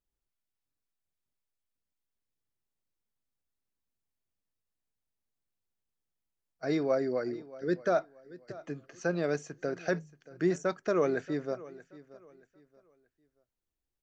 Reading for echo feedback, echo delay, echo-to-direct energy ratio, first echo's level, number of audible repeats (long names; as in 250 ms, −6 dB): 30%, 629 ms, −18.5 dB, −19.0 dB, 2